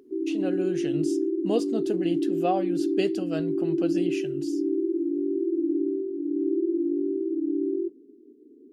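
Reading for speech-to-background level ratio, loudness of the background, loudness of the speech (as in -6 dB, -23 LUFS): -5.0 dB, -27.0 LUFS, -32.0 LUFS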